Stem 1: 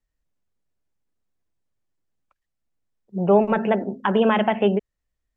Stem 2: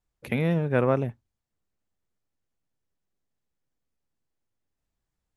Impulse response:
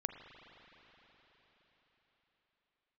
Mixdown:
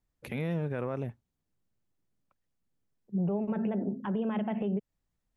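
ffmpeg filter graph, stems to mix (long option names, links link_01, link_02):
-filter_complex "[0:a]equalizer=frequency=170:width=0.44:gain=14,acompressor=threshold=-14dB:ratio=6,volume=-9dB[link_01];[1:a]volume=-3dB[link_02];[link_01][link_02]amix=inputs=2:normalize=0,alimiter=limit=-23.5dB:level=0:latency=1:release=124"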